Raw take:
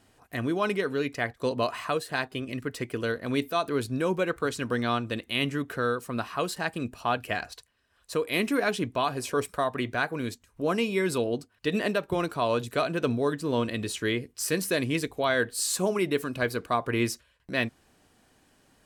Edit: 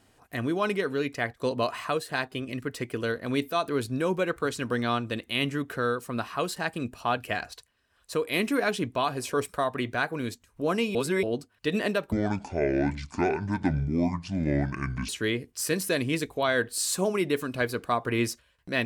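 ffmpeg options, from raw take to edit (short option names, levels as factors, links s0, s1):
-filter_complex "[0:a]asplit=5[s0][s1][s2][s3][s4];[s0]atrim=end=10.952[s5];[s1]atrim=start=10.948:end=11.232,asetpts=PTS-STARTPTS,areverse[s6];[s2]atrim=start=11.228:end=12.124[s7];[s3]atrim=start=12.12:end=13.9,asetpts=PTS-STARTPTS,asetrate=26460,aresample=44100[s8];[s4]atrim=start=13.896[s9];[s5][s6]acrossfade=d=0.004:c1=hsin:c2=hsin[s10];[s10][s7]acrossfade=d=0.004:c1=hsin:c2=hsin[s11];[s11][s8]acrossfade=d=0.004:c1=hsin:c2=hsin[s12];[s12][s9]acrossfade=d=0.004:c1=hsin:c2=hsin"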